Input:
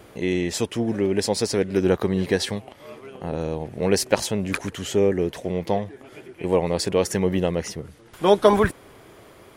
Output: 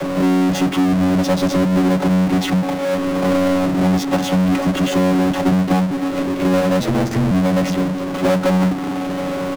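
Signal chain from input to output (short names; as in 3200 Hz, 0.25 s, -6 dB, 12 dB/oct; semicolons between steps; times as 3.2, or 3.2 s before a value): chord vocoder bare fifth, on F#3; LPF 1400 Hz 6 dB/oct; comb 6.9 ms, depth 73%; compressor, threshold -26 dBFS, peak gain reduction 14.5 dB; 5.31–6.24 transient shaper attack +7 dB, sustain -5 dB; 6.8–7.31 ring modulator 55 Hz; power-law curve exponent 0.35; gain +4.5 dB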